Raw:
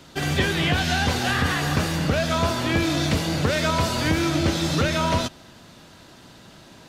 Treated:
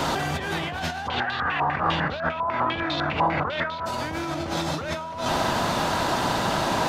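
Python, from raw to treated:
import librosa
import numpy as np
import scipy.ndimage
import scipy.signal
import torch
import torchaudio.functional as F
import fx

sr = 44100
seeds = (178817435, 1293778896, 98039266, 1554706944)

y = fx.peak_eq(x, sr, hz=890.0, db=12.0, octaves=1.5)
y = fx.over_compress(y, sr, threshold_db=-33.0, ratio=-1.0)
y = fx.filter_held_lowpass(y, sr, hz=10.0, low_hz=980.0, high_hz=3900.0, at=(1.07, 3.85), fade=0.02)
y = y * 10.0 ** (5.0 / 20.0)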